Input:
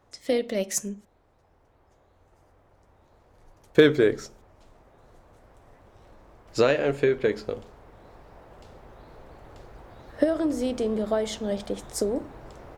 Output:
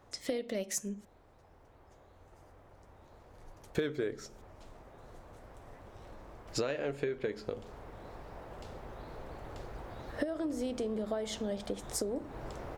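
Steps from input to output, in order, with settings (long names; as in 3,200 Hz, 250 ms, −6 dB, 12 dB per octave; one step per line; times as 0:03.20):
downward compressor 4 to 1, threshold −36 dBFS, peak gain reduction 20.5 dB
level +2 dB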